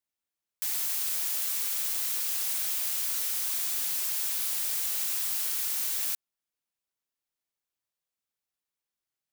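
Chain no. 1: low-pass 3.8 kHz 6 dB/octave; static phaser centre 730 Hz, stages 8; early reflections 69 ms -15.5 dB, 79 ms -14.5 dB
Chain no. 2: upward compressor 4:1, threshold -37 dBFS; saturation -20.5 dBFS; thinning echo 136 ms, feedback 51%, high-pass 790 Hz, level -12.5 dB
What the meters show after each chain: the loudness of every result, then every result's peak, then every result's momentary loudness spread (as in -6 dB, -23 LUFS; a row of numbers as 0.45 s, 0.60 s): -37.5 LUFS, -27.5 LUFS; -26.5 dBFS, -20.5 dBFS; 1 LU, 2 LU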